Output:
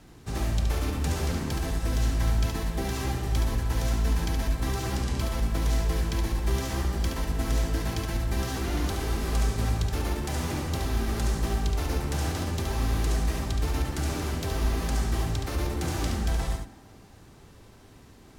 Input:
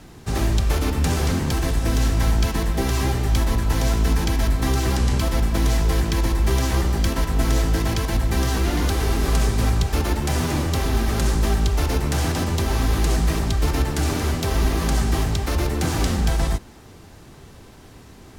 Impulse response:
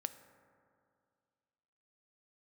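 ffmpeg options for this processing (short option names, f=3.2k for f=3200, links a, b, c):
-filter_complex "[0:a]asplit=2[a][b];[1:a]atrim=start_sample=2205,adelay=71[c];[b][c]afir=irnorm=-1:irlink=0,volume=-3.5dB[d];[a][d]amix=inputs=2:normalize=0,volume=-8.5dB"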